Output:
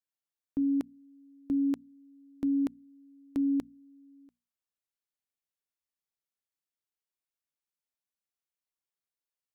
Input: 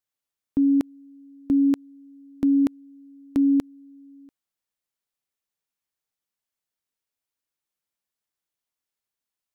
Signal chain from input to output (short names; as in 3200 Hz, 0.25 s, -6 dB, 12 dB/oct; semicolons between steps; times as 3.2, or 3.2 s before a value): notches 60/120/180/240 Hz; gain -8.5 dB